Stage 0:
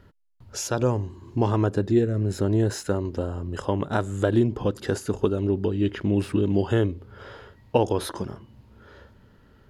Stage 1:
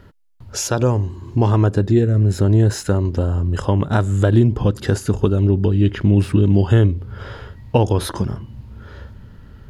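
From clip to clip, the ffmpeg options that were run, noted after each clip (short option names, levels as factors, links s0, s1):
-filter_complex "[0:a]asubboost=boost=2.5:cutoff=210,asplit=2[s0][s1];[s1]acompressor=threshold=0.0501:ratio=6,volume=0.708[s2];[s0][s2]amix=inputs=2:normalize=0,volume=1.41"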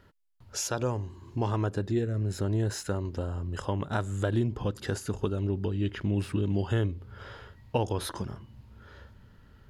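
-af "lowshelf=f=450:g=-6.5,volume=0.376"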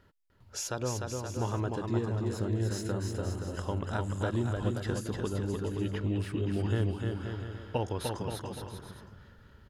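-af "aecho=1:1:300|525|693.8|820.3|915.2:0.631|0.398|0.251|0.158|0.1,volume=0.631"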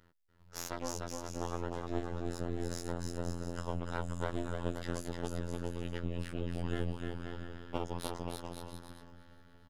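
-filter_complex "[0:a]afftfilt=real='hypot(re,im)*cos(PI*b)':imag='0':win_size=2048:overlap=0.75,aeval=exprs='max(val(0),0)':c=same,asplit=2[s0][s1];[s1]adelay=635,lowpass=f=4600:p=1,volume=0.106,asplit=2[s2][s3];[s3]adelay=635,lowpass=f=4600:p=1,volume=0.4,asplit=2[s4][s5];[s5]adelay=635,lowpass=f=4600:p=1,volume=0.4[s6];[s0][s2][s4][s6]amix=inputs=4:normalize=0"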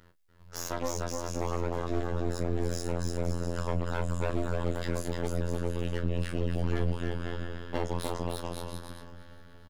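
-filter_complex "[0:a]asoftclip=type=hard:threshold=0.0562,asplit=2[s0][s1];[s1]adelay=33,volume=0.266[s2];[s0][s2]amix=inputs=2:normalize=0,volume=2.24"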